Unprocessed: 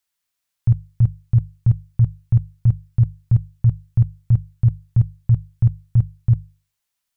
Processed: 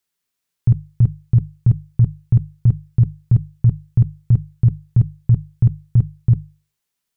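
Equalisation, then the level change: thirty-one-band EQ 160 Hz +10 dB, 250 Hz +7 dB, 400 Hz +10 dB; 0.0 dB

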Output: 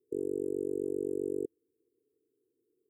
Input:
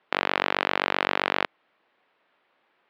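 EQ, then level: brick-wall FIR band-stop 480–7100 Hz; fixed phaser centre 1000 Hz, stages 8; +4.0 dB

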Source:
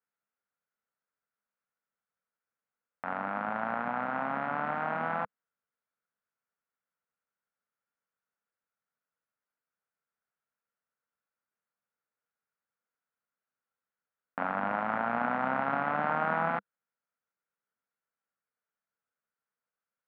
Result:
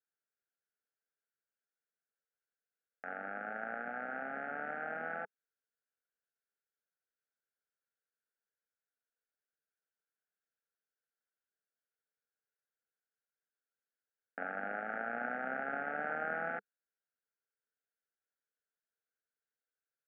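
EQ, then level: Butterworth band-stop 1000 Hz, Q 1.6; air absorption 160 m; speaker cabinet 250–2800 Hz, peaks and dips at 430 Hz +7 dB, 870 Hz +7 dB, 1600 Hz +8 dB; -7.5 dB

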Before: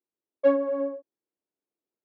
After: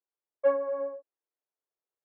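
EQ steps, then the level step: three-band isolator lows -22 dB, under 430 Hz, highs -23 dB, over 2100 Hz; low shelf 160 Hz -12 dB; 0.0 dB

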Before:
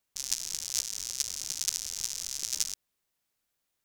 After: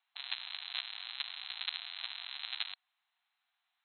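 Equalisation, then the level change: brick-wall FIR band-pass 670–4200 Hz; +5.0 dB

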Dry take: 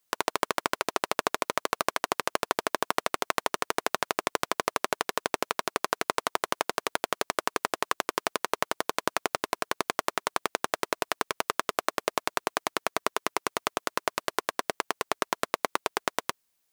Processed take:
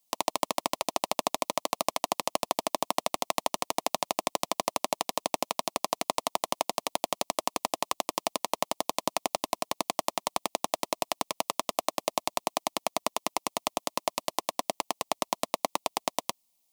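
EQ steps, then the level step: fixed phaser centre 410 Hz, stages 6; +2.5 dB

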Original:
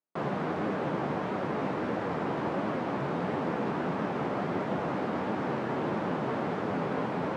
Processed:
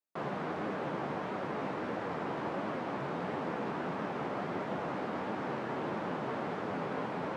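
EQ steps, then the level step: low shelf 430 Hz -4.5 dB; -3.0 dB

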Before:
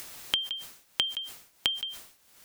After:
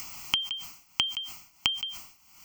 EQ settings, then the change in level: fixed phaser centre 2500 Hz, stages 8; +5.5 dB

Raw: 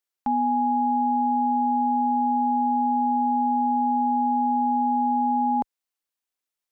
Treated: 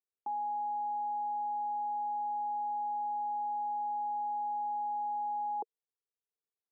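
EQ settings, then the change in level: ladder band-pass 490 Hz, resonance 70%; fixed phaser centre 380 Hz, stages 8; +3.0 dB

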